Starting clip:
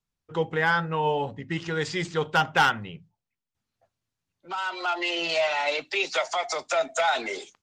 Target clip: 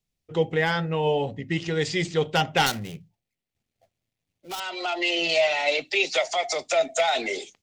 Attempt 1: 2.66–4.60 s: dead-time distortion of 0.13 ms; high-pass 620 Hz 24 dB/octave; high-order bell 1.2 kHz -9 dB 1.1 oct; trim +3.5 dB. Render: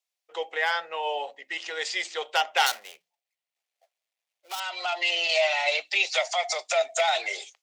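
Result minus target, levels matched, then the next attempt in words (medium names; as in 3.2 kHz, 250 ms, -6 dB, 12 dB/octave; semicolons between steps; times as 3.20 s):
500 Hz band -3.5 dB
2.66–4.60 s: dead-time distortion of 0.13 ms; high-order bell 1.2 kHz -9 dB 1.1 oct; trim +3.5 dB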